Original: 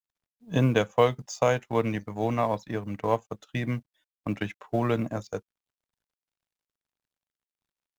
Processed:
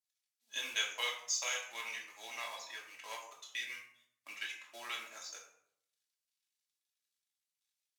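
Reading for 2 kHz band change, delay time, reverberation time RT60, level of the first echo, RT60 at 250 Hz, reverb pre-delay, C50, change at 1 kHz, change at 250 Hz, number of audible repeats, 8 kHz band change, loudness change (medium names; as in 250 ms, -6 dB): -3.5 dB, no echo, 0.70 s, no echo, 0.80 s, 3 ms, 5.5 dB, -16.5 dB, -37.0 dB, no echo, no reading, -11.5 dB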